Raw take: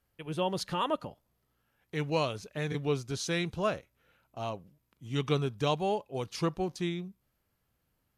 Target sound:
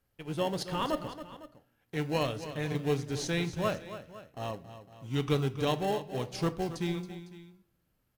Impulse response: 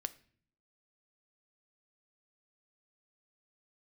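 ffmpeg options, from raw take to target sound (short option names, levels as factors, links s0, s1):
-filter_complex "[0:a]asplit=2[s0][s1];[s1]acrusher=samples=37:mix=1:aa=0.000001,volume=0.316[s2];[s0][s2]amix=inputs=2:normalize=0,aecho=1:1:275|506:0.237|0.133[s3];[1:a]atrim=start_sample=2205[s4];[s3][s4]afir=irnorm=-1:irlink=0"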